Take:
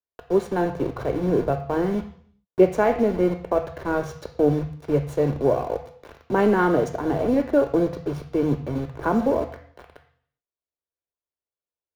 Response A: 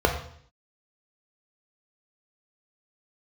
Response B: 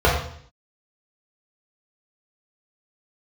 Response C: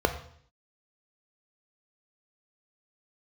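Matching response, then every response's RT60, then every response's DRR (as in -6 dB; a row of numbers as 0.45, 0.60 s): C; 0.60, 0.60, 0.60 s; 2.5, -5.5, 7.0 dB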